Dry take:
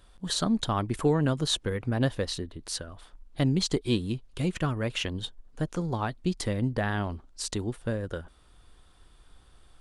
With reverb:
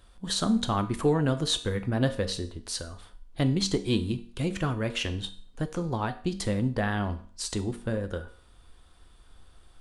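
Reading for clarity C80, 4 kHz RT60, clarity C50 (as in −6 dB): 18.0 dB, 0.45 s, 14.0 dB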